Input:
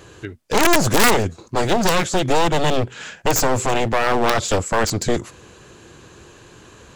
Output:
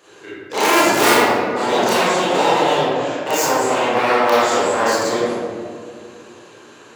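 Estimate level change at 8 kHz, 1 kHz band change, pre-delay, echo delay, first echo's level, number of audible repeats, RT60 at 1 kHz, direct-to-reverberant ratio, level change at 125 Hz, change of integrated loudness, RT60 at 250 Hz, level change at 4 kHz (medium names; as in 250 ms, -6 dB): -0.5 dB, +4.5 dB, 25 ms, no echo, no echo, no echo, 1.9 s, -11.0 dB, -9.0 dB, +3.0 dB, 2.9 s, +2.0 dB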